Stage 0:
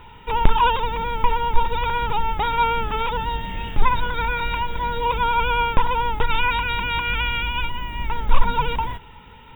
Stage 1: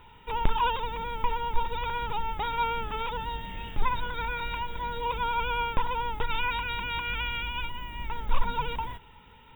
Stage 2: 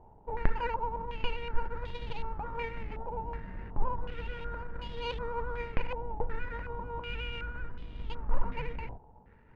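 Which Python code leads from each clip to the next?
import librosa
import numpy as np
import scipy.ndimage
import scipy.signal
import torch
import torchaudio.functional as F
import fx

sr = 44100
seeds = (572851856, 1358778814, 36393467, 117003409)

y1 = fx.bass_treble(x, sr, bass_db=-1, treble_db=4)
y1 = F.gain(torch.from_numpy(y1), -8.5).numpy()
y2 = scipy.ndimage.median_filter(y1, 41, mode='constant')
y2 = fx.filter_held_lowpass(y2, sr, hz=2.7, low_hz=800.0, high_hz=3400.0)
y2 = F.gain(torch.from_numpy(y2), -2.0).numpy()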